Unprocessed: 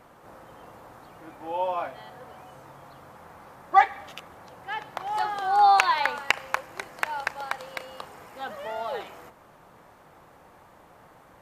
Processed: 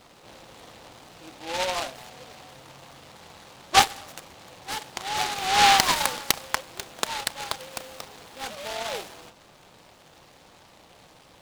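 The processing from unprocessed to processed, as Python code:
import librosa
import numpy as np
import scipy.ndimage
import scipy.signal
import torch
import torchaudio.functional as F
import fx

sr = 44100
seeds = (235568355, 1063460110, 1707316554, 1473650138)

y = fx.noise_mod_delay(x, sr, seeds[0], noise_hz=2500.0, depth_ms=0.15)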